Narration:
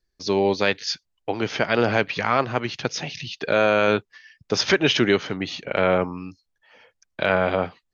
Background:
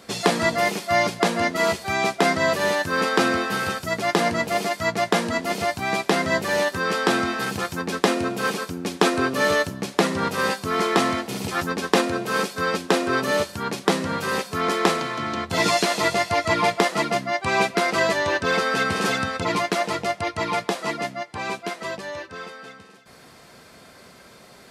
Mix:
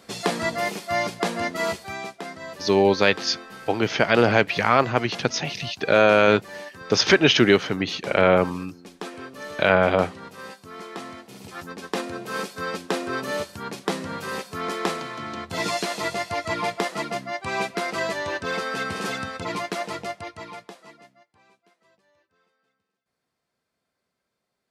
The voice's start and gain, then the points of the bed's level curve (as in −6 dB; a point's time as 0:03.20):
2.40 s, +2.5 dB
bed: 0:01.73 −4.5 dB
0:02.24 −16.5 dB
0:10.99 −16.5 dB
0:12.39 −6 dB
0:20.03 −6 dB
0:21.56 −32.5 dB